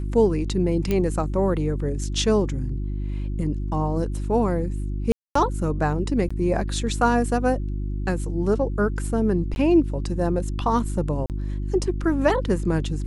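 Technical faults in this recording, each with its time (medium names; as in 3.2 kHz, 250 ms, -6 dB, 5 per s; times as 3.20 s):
hum 50 Hz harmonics 7 -27 dBFS
0.91 s: pop -11 dBFS
5.12–5.35 s: dropout 234 ms
6.29–6.30 s: dropout 15 ms
9.55–9.56 s: dropout 11 ms
11.26–11.30 s: dropout 38 ms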